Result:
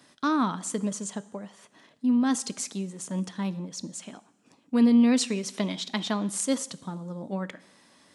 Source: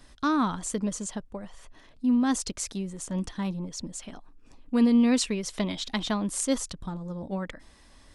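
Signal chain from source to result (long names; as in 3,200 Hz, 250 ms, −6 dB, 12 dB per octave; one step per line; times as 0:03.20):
high-pass filter 140 Hz 24 dB per octave
coupled-rooms reverb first 0.79 s, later 2.7 s, from −20 dB, DRR 15 dB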